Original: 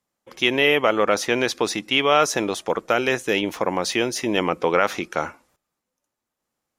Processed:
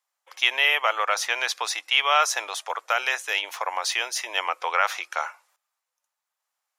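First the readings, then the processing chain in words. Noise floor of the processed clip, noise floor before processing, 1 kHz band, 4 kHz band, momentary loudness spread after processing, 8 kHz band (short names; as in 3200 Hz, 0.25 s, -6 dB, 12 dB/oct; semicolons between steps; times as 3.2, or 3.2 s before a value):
-85 dBFS, -83 dBFS, -1.0 dB, 0.0 dB, 10 LU, 0.0 dB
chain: HPF 760 Hz 24 dB/oct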